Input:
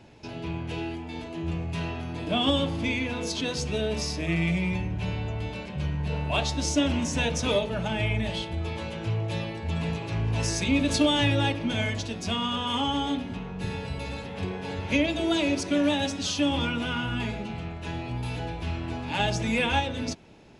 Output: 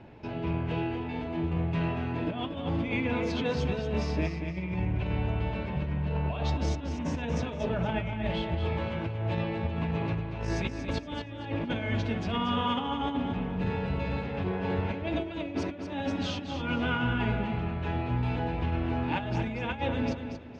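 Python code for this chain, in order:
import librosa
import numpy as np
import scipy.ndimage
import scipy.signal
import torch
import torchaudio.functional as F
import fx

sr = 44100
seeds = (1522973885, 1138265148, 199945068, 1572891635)

p1 = scipy.signal.sosfilt(scipy.signal.butter(2, 2200.0, 'lowpass', fs=sr, output='sos'), x)
p2 = fx.over_compress(p1, sr, threshold_db=-30.0, ratio=-0.5)
y = p2 + fx.echo_feedback(p2, sr, ms=234, feedback_pct=31, wet_db=-8, dry=0)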